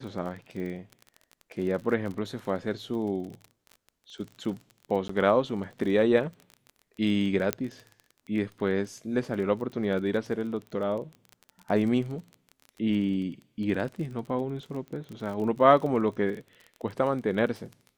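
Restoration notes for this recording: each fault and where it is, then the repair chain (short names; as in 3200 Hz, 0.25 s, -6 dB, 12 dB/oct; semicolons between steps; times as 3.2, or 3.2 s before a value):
crackle 27/s -35 dBFS
5.08–5.09 gap 14 ms
7.53 pop -10 dBFS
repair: de-click; interpolate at 5.08, 14 ms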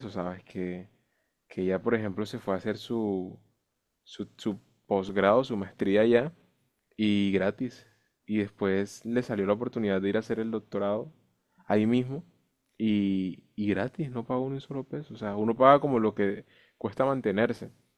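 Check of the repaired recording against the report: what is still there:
none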